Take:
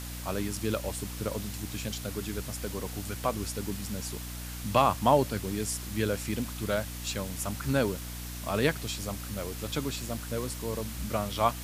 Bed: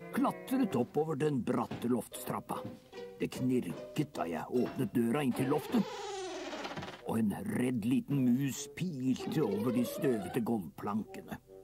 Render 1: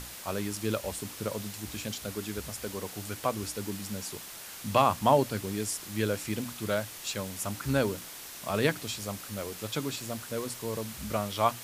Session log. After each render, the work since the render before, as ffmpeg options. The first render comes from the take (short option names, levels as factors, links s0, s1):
-af "bandreject=f=60:t=h:w=6,bandreject=f=120:t=h:w=6,bandreject=f=180:t=h:w=6,bandreject=f=240:t=h:w=6,bandreject=f=300:t=h:w=6"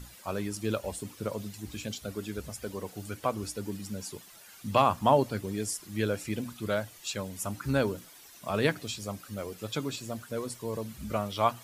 -af "afftdn=nr=12:nf=-44"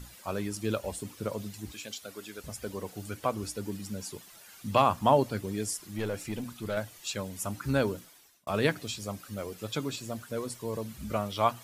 -filter_complex "[0:a]asettb=1/sr,asplit=3[s0][s1][s2];[s0]atrim=end=1.724[s3];[s1]atrim=start=1.72:end=2.44,asetpts=PTS-STARTPTS,afade=t=in:d=0.004:c=qsin,afade=t=out:st=0.716:d=0.004:c=qsin,highpass=f=720:p=1[s4];[s2]atrim=start=2.436[s5];[s3][s4]acrossfade=d=0.004:c1=hsin:c2=qsin[s6];[s6][s5]acrossfade=d=0.004:c1=qsin:c2=hsin,asettb=1/sr,asplit=3[s7][s8][s9];[s7]atrim=end=5.914[s10];[s8]atrim=start=5.91:end=6.77,asetpts=PTS-STARTPTS,afade=t=in:d=0.004:c=qsin,afade=t=out:st=0.856:d=0.004:c=qsin,aeval=exprs='(tanh(20*val(0)+0.25)-tanh(0.25))/20':c=same[s11];[s9]atrim=start=6.766[s12];[s10][s11]acrossfade=d=0.004:c1=hsin:c2=qsin[s13];[s13][s12]acrossfade=d=0.004:c1=qsin:c2=hsin,asplit=2[s14][s15];[s14]atrim=end=8.47,asetpts=PTS-STARTPTS,afade=t=out:st=7.94:d=0.53[s16];[s15]atrim=start=8.47,asetpts=PTS-STARTPTS,afade=t=in:d=0.004:c=hsin[s17];[s16][s17]concat=n=2:v=0:a=1"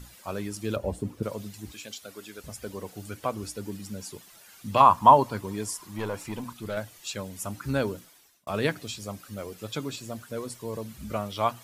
-filter_complex "[0:a]asettb=1/sr,asplit=3[s0][s1][s2];[s0]atrim=end=0.764[s3];[s1]atrim=start=0.76:end=1.23,asetpts=PTS-STARTPTS,afade=t=in:d=0.004:c=qsin,afade=t=out:st=0.466:d=0.004:c=qsin,tiltshelf=f=1100:g=9[s4];[s2]atrim=start=1.226[s5];[s3][s4]acrossfade=d=0.004:c1=hsin:c2=qsin[s6];[s6][s5]acrossfade=d=0.004:c1=qsin:c2=hsin,asettb=1/sr,asplit=3[s7][s8][s9];[s7]atrim=end=4.804[s10];[s8]atrim=start=4.8:end=6.53,asetpts=PTS-STARTPTS,afade=t=in:d=0.004:c=qsin,afade=t=out:st=1.726:d=0.004:c=qsin,equalizer=f=990:t=o:w=0.45:g=14.5[s11];[s9]atrim=start=6.526[s12];[s10][s11]acrossfade=d=0.004:c1=hsin:c2=qsin[s13];[s13][s12]acrossfade=d=0.004:c1=qsin:c2=hsin"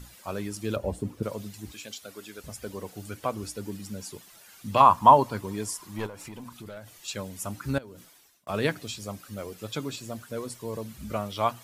-filter_complex "[0:a]asettb=1/sr,asplit=3[s0][s1][s2];[s0]atrim=end=6.064[s3];[s1]atrim=start=6.06:end=7.08,asetpts=PTS-STARTPTS,afade=t=in:d=0.004:c=qsin,afade=t=out:st=1.016:d=0.004:c=qsin,acompressor=threshold=0.0126:ratio=6:attack=3.2:release=140:knee=1:detection=peak[s4];[s2]atrim=start=7.076[s5];[s3][s4]acrossfade=d=0.004:c1=hsin:c2=qsin[s6];[s6][s5]acrossfade=d=0.004:c1=qsin:c2=hsin,asettb=1/sr,asplit=3[s7][s8][s9];[s7]atrim=end=7.784[s10];[s8]atrim=start=7.78:end=8.49,asetpts=PTS-STARTPTS,afade=t=in:d=0.004:c=qsin,afade=t=out:st=0.706:d=0.004:c=qsin,acompressor=threshold=0.01:ratio=16:attack=3.2:release=140:knee=1:detection=peak[s11];[s9]atrim=start=8.486[s12];[s10][s11]acrossfade=d=0.004:c1=hsin:c2=qsin[s13];[s13][s12]acrossfade=d=0.004:c1=qsin:c2=hsin"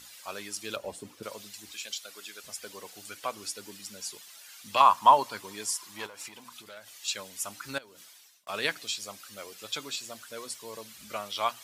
-af "highpass=f=1100:p=1,equalizer=f=4300:t=o:w=2.2:g=5.5"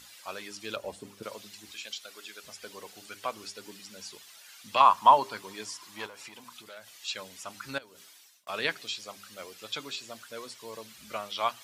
-filter_complex "[0:a]acrossover=split=5400[s0][s1];[s1]acompressor=threshold=0.00251:ratio=4:attack=1:release=60[s2];[s0][s2]amix=inputs=2:normalize=0,bandreject=f=100.6:t=h:w=4,bandreject=f=201.2:t=h:w=4,bandreject=f=301.8:t=h:w=4,bandreject=f=402.4:t=h:w=4"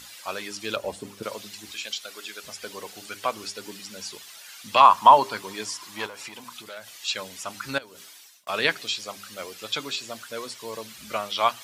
-af "volume=2.24,alimiter=limit=0.708:level=0:latency=1"